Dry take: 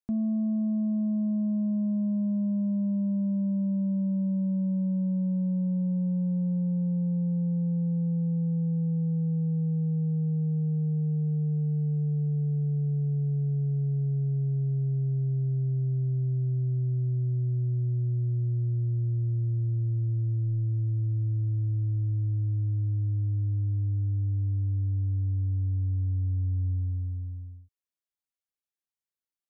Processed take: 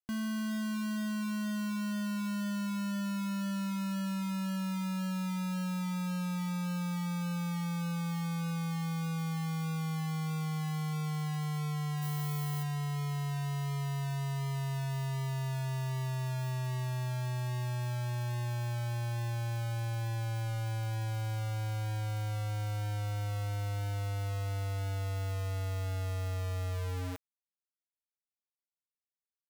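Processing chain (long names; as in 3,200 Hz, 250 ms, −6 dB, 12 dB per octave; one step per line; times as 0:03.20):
far-end echo of a speakerphone 300 ms, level −14 dB
bit reduction 5 bits
0:12.01–0:12.62: background noise violet −37 dBFS
level −9 dB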